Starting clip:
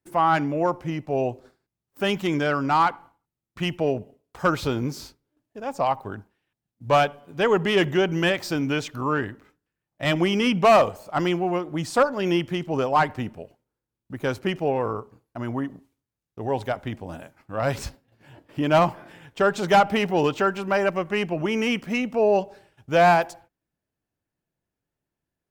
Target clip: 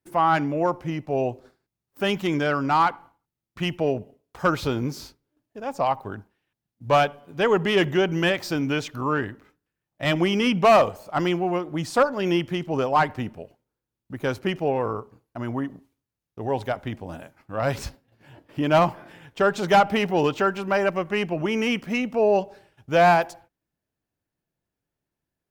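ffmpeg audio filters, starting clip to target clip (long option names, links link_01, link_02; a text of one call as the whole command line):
ffmpeg -i in.wav -af "equalizer=frequency=7900:width=3:gain=-2.5" out.wav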